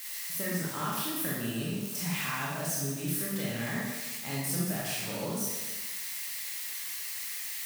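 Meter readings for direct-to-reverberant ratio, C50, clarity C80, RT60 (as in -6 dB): -5.5 dB, -1.5 dB, 1.5 dB, 1.2 s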